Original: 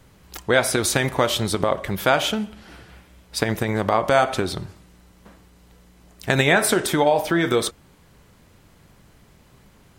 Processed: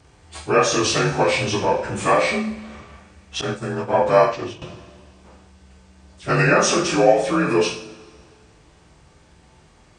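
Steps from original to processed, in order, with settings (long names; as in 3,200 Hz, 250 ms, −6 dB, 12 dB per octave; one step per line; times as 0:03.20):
partials spread apart or drawn together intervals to 87%
coupled-rooms reverb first 0.47 s, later 1.9 s, from −19 dB, DRR −2 dB
0:03.41–0:04.62: downward expander −16 dBFS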